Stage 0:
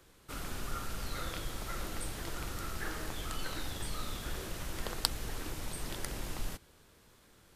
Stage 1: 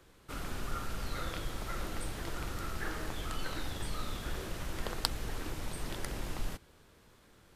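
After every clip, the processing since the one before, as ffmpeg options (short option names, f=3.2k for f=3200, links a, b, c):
-af "highshelf=f=4.4k:g=-6,volume=1.5dB"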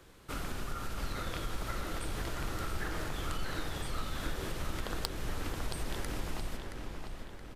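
-filter_complex "[0:a]acompressor=threshold=-36dB:ratio=6,asplit=2[a][b];[b]adelay=673,lowpass=f=4.4k:p=1,volume=-5dB,asplit=2[c][d];[d]adelay=673,lowpass=f=4.4k:p=1,volume=0.54,asplit=2[e][f];[f]adelay=673,lowpass=f=4.4k:p=1,volume=0.54,asplit=2[g][h];[h]adelay=673,lowpass=f=4.4k:p=1,volume=0.54,asplit=2[i][j];[j]adelay=673,lowpass=f=4.4k:p=1,volume=0.54,asplit=2[k][l];[l]adelay=673,lowpass=f=4.4k:p=1,volume=0.54,asplit=2[m][n];[n]adelay=673,lowpass=f=4.4k:p=1,volume=0.54[o];[a][c][e][g][i][k][m][o]amix=inputs=8:normalize=0,volume=3.5dB"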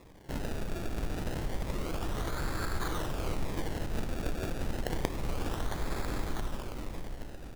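-af "acrusher=samples=29:mix=1:aa=0.000001:lfo=1:lforange=29:lforate=0.29,volume=3dB"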